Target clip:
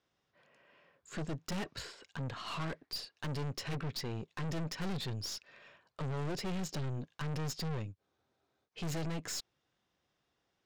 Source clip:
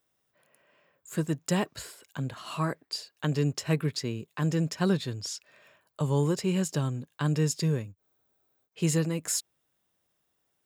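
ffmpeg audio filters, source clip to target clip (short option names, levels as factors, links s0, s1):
-af "lowpass=f=5800:w=0.5412,lowpass=f=5800:w=1.3066,bandreject=f=620:w=15,aeval=exprs='(tanh(79.4*val(0)+0.45)-tanh(0.45))/79.4':c=same,volume=1.33"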